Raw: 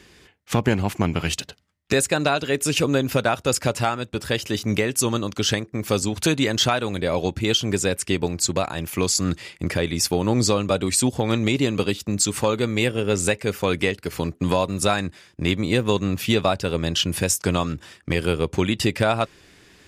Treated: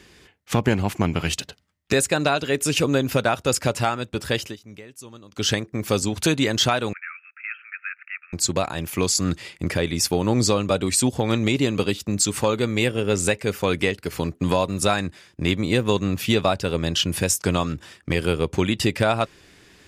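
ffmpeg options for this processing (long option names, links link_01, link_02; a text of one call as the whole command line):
ffmpeg -i in.wav -filter_complex "[0:a]asettb=1/sr,asplit=3[link_01][link_02][link_03];[link_01]atrim=end=6.934[link_04];[link_02]atrim=start=6.93:end=8.33,asetpts=PTS-STARTPTS,afade=type=in:duration=0.004:curve=qsin,afade=type=out:start_time=1.396:duration=0.004:curve=qsin,asuperpass=centerf=1800:order=20:qfactor=1.3[link_05];[link_03]atrim=start=8.326[link_06];[link_04][link_05]acrossfade=duration=0.004:curve1=hsin:curve2=qsin[link_07];[link_07][link_06]acrossfade=duration=0.004:curve1=qsin:curve2=hsin,asplit=3[link_08][link_09][link_10];[link_08]atrim=end=4.56,asetpts=PTS-STARTPTS,afade=type=out:start_time=4.42:duration=0.14:silence=0.1[link_11];[link_09]atrim=start=4.56:end=5.31,asetpts=PTS-STARTPTS,volume=-20dB[link_12];[link_10]atrim=start=5.31,asetpts=PTS-STARTPTS,afade=type=in:duration=0.14:silence=0.1[link_13];[link_11][link_12][link_13]concat=n=3:v=0:a=1" out.wav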